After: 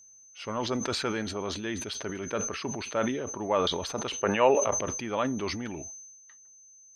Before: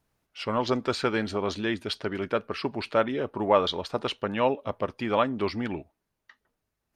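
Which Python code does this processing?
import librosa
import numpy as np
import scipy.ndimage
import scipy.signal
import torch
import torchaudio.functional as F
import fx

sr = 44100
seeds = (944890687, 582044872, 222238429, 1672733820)

y = fx.spec_box(x, sr, start_s=4.22, length_s=0.51, low_hz=360.0, high_hz=3000.0, gain_db=8)
y = y + 10.0 ** (-46.0 / 20.0) * np.sin(2.0 * np.pi * 6200.0 * np.arange(len(y)) / sr)
y = fx.sustainer(y, sr, db_per_s=40.0)
y = F.gain(torch.from_numpy(y), -6.0).numpy()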